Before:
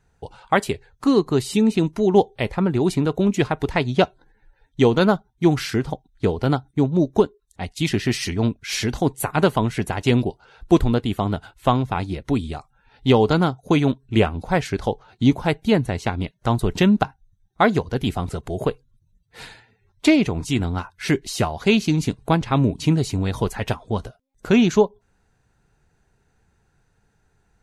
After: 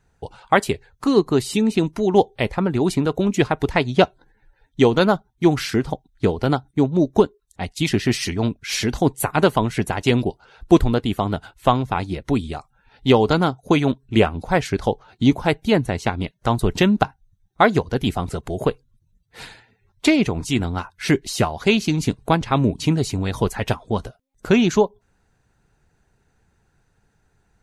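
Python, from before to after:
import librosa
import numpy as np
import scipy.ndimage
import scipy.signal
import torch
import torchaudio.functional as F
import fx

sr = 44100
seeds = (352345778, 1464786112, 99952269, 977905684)

y = fx.hpss(x, sr, part='harmonic', gain_db=-4)
y = y * librosa.db_to_amplitude(2.5)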